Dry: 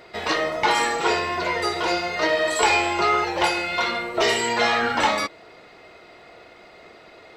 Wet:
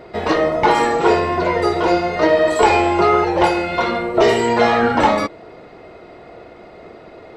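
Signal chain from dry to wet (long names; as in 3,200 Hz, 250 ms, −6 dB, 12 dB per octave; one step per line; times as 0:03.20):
tilt shelving filter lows +8 dB, about 1,200 Hz
level +4 dB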